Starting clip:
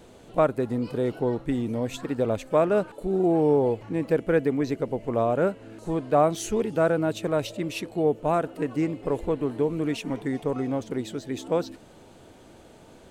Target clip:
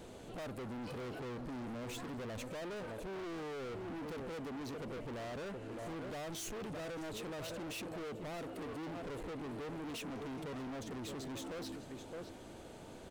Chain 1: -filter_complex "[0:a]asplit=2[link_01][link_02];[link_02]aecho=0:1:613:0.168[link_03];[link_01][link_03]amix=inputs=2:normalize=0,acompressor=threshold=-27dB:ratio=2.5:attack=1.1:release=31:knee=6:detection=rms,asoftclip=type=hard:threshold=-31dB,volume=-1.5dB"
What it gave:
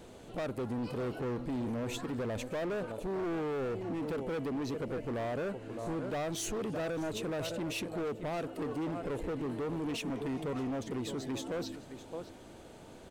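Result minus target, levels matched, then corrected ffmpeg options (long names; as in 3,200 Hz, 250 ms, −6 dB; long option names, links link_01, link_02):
hard clipping: distortion −5 dB
-filter_complex "[0:a]asplit=2[link_01][link_02];[link_02]aecho=0:1:613:0.168[link_03];[link_01][link_03]amix=inputs=2:normalize=0,acompressor=threshold=-27dB:ratio=2.5:attack=1.1:release=31:knee=6:detection=rms,asoftclip=type=hard:threshold=-40.5dB,volume=-1.5dB"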